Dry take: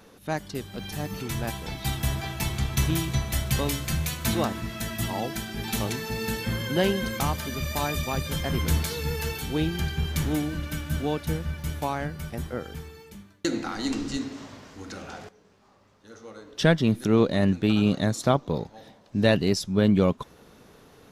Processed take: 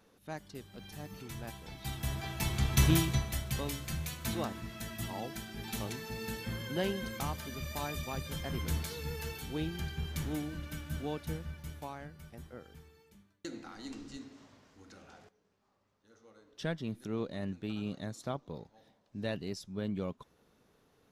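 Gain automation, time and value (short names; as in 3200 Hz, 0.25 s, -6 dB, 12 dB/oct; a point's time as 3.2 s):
1.68 s -13 dB
2.93 s 0 dB
3.42 s -10 dB
11.33 s -10 dB
12.04 s -16 dB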